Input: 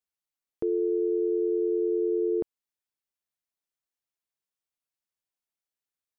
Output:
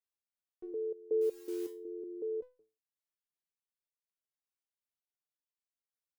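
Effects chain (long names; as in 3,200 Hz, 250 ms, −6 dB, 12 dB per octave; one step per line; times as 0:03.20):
0:01.21–0:01.69: bit-depth reduction 8 bits, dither triangular
step-sequenced resonator 5.4 Hz 60–500 Hz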